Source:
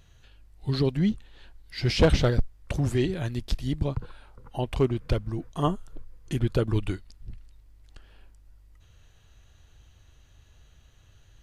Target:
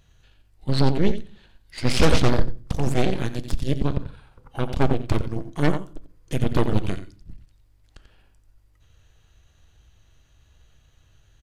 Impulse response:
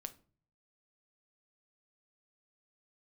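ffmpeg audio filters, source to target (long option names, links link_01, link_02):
-filter_complex "[0:a]aecho=1:1:89|178|267:0.398|0.0677|0.0115,aeval=exprs='0.355*(cos(1*acos(clip(val(0)/0.355,-1,1)))-cos(1*PI/2))+0.141*(cos(6*acos(clip(val(0)/0.355,-1,1)))-cos(6*PI/2))':channel_layout=same,asplit=2[link_01][link_02];[1:a]atrim=start_sample=2205[link_03];[link_02][link_03]afir=irnorm=-1:irlink=0,volume=4dB[link_04];[link_01][link_04]amix=inputs=2:normalize=0,volume=-7.5dB"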